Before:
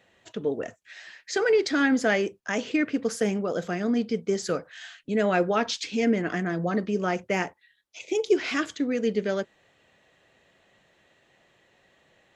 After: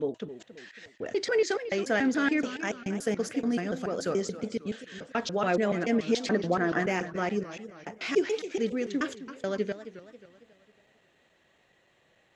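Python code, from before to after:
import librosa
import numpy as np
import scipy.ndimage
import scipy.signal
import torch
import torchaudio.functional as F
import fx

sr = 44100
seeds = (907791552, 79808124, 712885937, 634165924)

y = fx.block_reorder(x, sr, ms=143.0, group=4)
y = fx.spec_box(y, sr, start_s=6.03, length_s=0.84, low_hz=230.0, high_hz=2000.0, gain_db=6)
y = fx.echo_warbled(y, sr, ms=271, feedback_pct=45, rate_hz=2.8, cents=183, wet_db=-13.5)
y = y * 10.0 ** (-3.5 / 20.0)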